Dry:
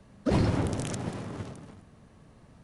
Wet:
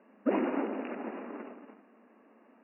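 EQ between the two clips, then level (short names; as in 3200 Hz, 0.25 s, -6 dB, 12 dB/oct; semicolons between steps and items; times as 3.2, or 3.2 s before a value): brick-wall FIR band-pass 210–2900 Hz; air absorption 180 m; 0.0 dB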